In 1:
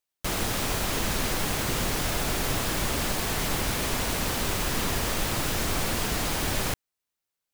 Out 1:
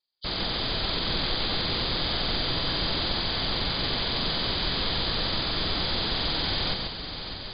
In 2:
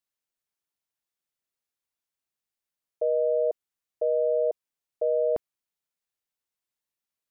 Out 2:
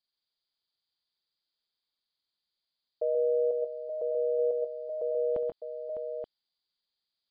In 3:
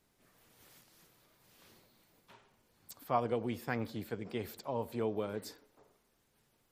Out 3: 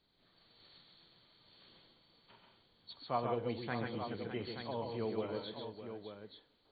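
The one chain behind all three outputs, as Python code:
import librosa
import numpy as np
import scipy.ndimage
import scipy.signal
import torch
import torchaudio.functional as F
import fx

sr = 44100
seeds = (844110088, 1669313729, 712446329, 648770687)

y = fx.freq_compress(x, sr, knee_hz=3000.0, ratio=4.0)
y = fx.echo_multitap(y, sr, ms=(66, 133, 139, 156, 604, 878), db=(-20.0, -5.0, -11.0, -16.0, -10.5, -8.0))
y = y * librosa.db_to_amplitude(-4.0)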